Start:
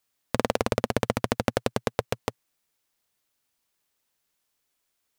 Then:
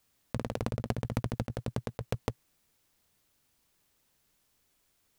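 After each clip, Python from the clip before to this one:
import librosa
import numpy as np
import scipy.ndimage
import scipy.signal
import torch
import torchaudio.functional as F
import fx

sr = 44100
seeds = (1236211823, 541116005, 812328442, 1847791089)

y = fx.over_compress(x, sr, threshold_db=-30.0, ratio=-0.5)
y = fx.low_shelf(y, sr, hz=280.0, db=11.0)
y = y * 10.0 ** (-4.5 / 20.0)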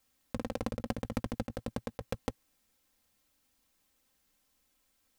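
y = x + 0.62 * np.pad(x, (int(3.8 * sr / 1000.0), 0))[:len(x)]
y = y * 10.0 ** (-3.0 / 20.0)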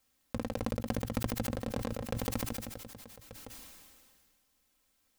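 y = x + 10.0 ** (-15.0 / 20.0) * np.pad(x, (int(1185 * sr / 1000.0), 0))[:len(x)]
y = fx.sustainer(y, sr, db_per_s=29.0)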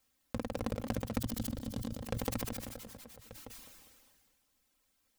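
y = fx.dereverb_blind(x, sr, rt60_s=0.53)
y = fx.spec_box(y, sr, start_s=1.19, length_s=0.84, low_hz=320.0, high_hz=2900.0, gain_db=-9)
y = fx.echo_warbled(y, sr, ms=202, feedback_pct=37, rate_hz=2.8, cents=183, wet_db=-13)
y = y * 10.0 ** (-1.0 / 20.0)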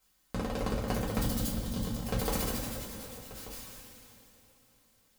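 y = fx.rev_double_slope(x, sr, seeds[0], early_s=0.33, late_s=3.9, knee_db=-18, drr_db=-5.0)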